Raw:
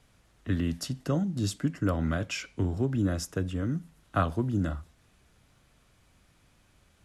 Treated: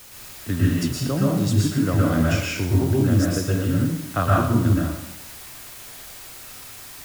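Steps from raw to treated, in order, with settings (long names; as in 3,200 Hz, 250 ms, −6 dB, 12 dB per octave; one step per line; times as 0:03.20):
in parallel at −9 dB: bit-depth reduction 6 bits, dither triangular
on the sum: dense smooth reverb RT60 0.81 s, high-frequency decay 0.8×, pre-delay 105 ms, DRR −4.5 dB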